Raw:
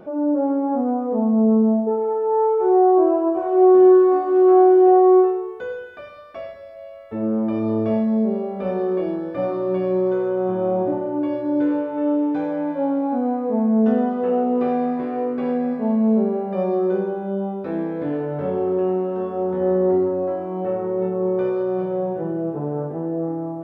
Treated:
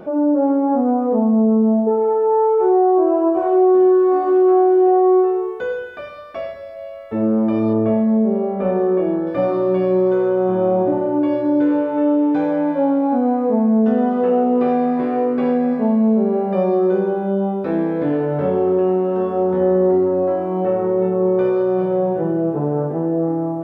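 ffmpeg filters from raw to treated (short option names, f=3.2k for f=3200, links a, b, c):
-filter_complex "[0:a]asettb=1/sr,asplit=3[a][b][c];[a]atrim=end=7.734[d];[b]atrim=start=7.73:end=9.27,asetpts=PTS-STARTPTS,afade=t=in:d=0.004:c=qsin,afade=t=out:st=1.536:d=0.004:c=qsin,lowpass=2.1k[e];[c]atrim=start=9.266[f];[d][e]acrossfade=d=0.004:c1=hsin:c2=qsin[g];[g][f]acrossfade=d=0.004:c1=qsin:c2=hsin,bandreject=f=50:t=h:w=6,bandreject=f=100:t=h:w=6,acompressor=threshold=-19dB:ratio=3,volume=6dB"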